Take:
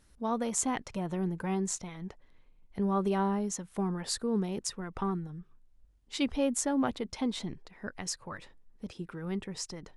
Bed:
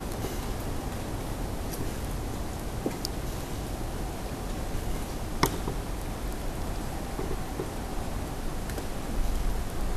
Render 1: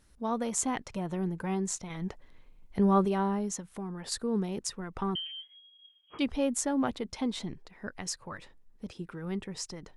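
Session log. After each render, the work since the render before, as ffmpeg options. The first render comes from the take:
-filter_complex "[0:a]asettb=1/sr,asplit=3[s0][s1][s2];[s0]atrim=end=3.604[s3];[s1]atrim=start=3.6:end=4.12,asetpts=PTS-STARTPTS,afade=t=in:d=0.004:c=qsin,afade=t=out:st=0.516:d=0.004:c=qsin,acompressor=threshold=0.0112:ratio=2:attack=3.2:release=140:knee=1:detection=peak[s4];[s2]atrim=start=4.116[s5];[s3][s4]acrossfade=d=0.004:c1=hsin:c2=qsin[s6];[s6][s5]acrossfade=d=0.004:c1=qsin:c2=hsin,asettb=1/sr,asplit=3[s7][s8][s9];[s7]atrim=end=5.154[s10];[s8]atrim=start=5.15:end=6.19,asetpts=PTS-STARTPTS,afade=t=in:d=0.004:c=qsin,afade=t=out:st=1.036:d=0.004:c=qsin,lowpass=f=2800:t=q:w=0.5098,lowpass=f=2800:t=q:w=0.6013,lowpass=f=2800:t=q:w=0.9,lowpass=f=2800:t=q:w=2.563,afreqshift=-3300[s11];[s9]atrim=start=6.186[s12];[s10][s11]acrossfade=d=0.004:c1=hsin:c2=qsin[s13];[s13][s12]acrossfade=d=0.004:c1=qsin:c2=hsin,asplit=3[s14][s15][s16];[s14]atrim=end=1.902[s17];[s15]atrim=start=1.898:end=3.052,asetpts=PTS-STARTPTS,volume=1.88[s18];[s16]atrim=start=3.048[s19];[s17][s18]acrossfade=d=0.004:c1=hsin:c2=hsin[s20];[s20][s19]acrossfade=d=0.004:c1=hsin:c2=hsin"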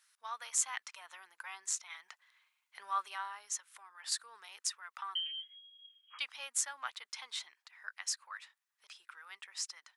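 -af "highpass=f=1200:w=0.5412,highpass=f=1200:w=1.3066"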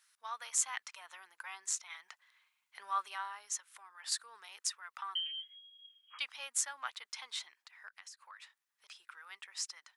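-filter_complex "[0:a]asettb=1/sr,asplit=3[s0][s1][s2];[s0]atrim=end=7.874[s3];[s1]atrim=start=7.87:end=8.4,asetpts=PTS-STARTPTS,afade=t=in:d=0.004:c=qsin,afade=t=out:st=0.526:d=0.004:c=qsin,acompressor=threshold=0.00398:ratio=10:attack=3.2:release=140:knee=1:detection=peak[s4];[s2]atrim=start=8.396[s5];[s3][s4]acrossfade=d=0.004:c1=hsin:c2=qsin[s6];[s6][s5]acrossfade=d=0.004:c1=qsin:c2=hsin"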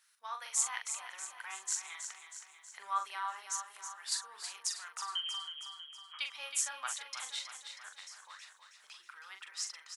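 -filter_complex "[0:a]asplit=2[s0][s1];[s1]adelay=42,volume=0.473[s2];[s0][s2]amix=inputs=2:normalize=0,asplit=2[s3][s4];[s4]aecho=0:1:320|640|960|1280|1600|1920|2240:0.376|0.207|0.114|0.0625|0.0344|0.0189|0.0104[s5];[s3][s5]amix=inputs=2:normalize=0"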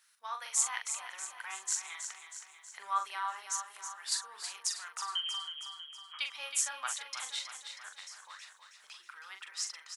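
-af "volume=1.26"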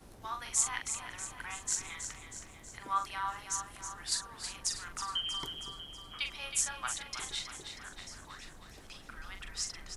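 -filter_complex "[1:a]volume=0.0891[s0];[0:a][s0]amix=inputs=2:normalize=0"

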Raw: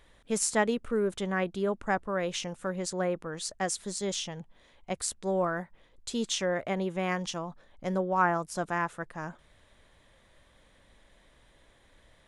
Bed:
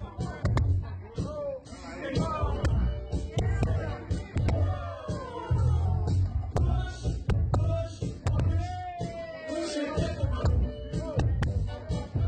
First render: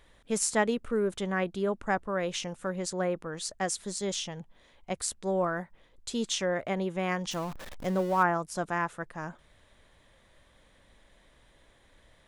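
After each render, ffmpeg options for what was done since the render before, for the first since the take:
-filter_complex "[0:a]asettb=1/sr,asplit=3[s0][s1][s2];[s0]atrim=end=7.314[s3];[s1]atrim=start=7.31:end=8.23,asetpts=PTS-STARTPTS,afade=t=in:d=0.004:c=qsin,afade=t=out:st=0.916:d=0.004:c=qsin,aeval=exprs='val(0)+0.5*0.0133*sgn(val(0))':c=same[s4];[s2]atrim=start=8.226[s5];[s3][s4]acrossfade=d=0.004:c1=hsin:c2=qsin[s6];[s6][s5]acrossfade=d=0.004:c1=qsin:c2=hsin"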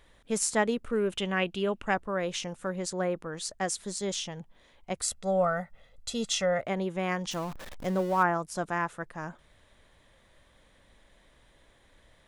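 -filter_complex "[0:a]asettb=1/sr,asplit=3[s0][s1][s2];[s0]atrim=end=0.934[s3];[s1]atrim=start=0.93:end=1.94,asetpts=PTS-STARTPTS,afade=t=in:d=0.004:c=qsin,afade=t=out:st=1.006:d=0.004:c=qsin,equalizer=f=2800:w=2.8:g=14[s4];[s2]atrim=start=1.936[s5];[s3][s4]acrossfade=d=0.004:c1=hsin:c2=qsin[s6];[s6][s5]acrossfade=d=0.004:c1=qsin:c2=hsin,asettb=1/sr,asplit=3[s7][s8][s9];[s7]atrim=end=5.024[s10];[s8]atrim=start=5.02:end=6.61,asetpts=PTS-STARTPTS,afade=t=in:d=0.004:c=qsin,afade=t=out:st=1.586:d=0.004:c=qsin,aecho=1:1:1.5:0.77,atrim=end_sample=70119[s11];[s9]atrim=start=6.606[s12];[s10][s11]acrossfade=d=0.004:c1=hsin:c2=qsin[s13];[s13][s12]acrossfade=d=0.004:c1=qsin:c2=hsin"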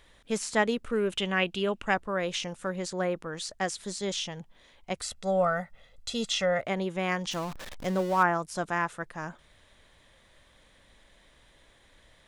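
-filter_complex "[0:a]acrossover=split=4200[s0][s1];[s1]acompressor=threshold=0.01:ratio=4:attack=1:release=60[s2];[s0][s2]amix=inputs=2:normalize=0,equalizer=f=4400:t=o:w=2.8:g=4.5"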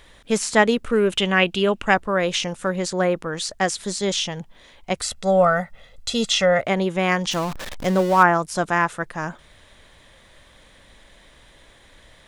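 -af "volume=2.82"

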